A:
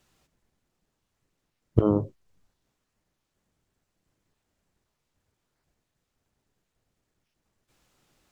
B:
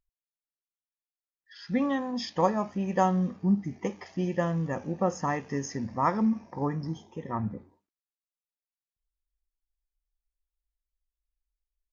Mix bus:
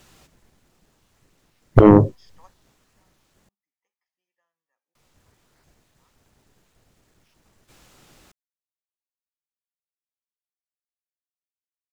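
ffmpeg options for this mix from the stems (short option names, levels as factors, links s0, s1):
-filter_complex "[0:a]aeval=exprs='0.75*sin(PI/2*3.55*val(0)/0.75)':c=same,volume=1,asplit=3[s0][s1][s2];[s0]atrim=end=3.49,asetpts=PTS-STARTPTS,afade=t=out:st=3.486:d=0.004:c=hsin[s3];[s1]atrim=start=3.49:end=4.95,asetpts=PTS-STARTPTS,volume=0[s4];[s2]atrim=start=4.95,asetpts=PTS-STARTPTS,afade=t=in:d=0.004:c=hsin[s5];[s3][s4][s5]concat=n=3:v=0:a=1,asplit=2[s6][s7];[1:a]highpass=1200,volume=0.106[s8];[s7]apad=whole_len=526015[s9];[s8][s9]sidechaingate=range=0.0891:threshold=0.00316:ratio=16:detection=peak[s10];[s6][s10]amix=inputs=2:normalize=0"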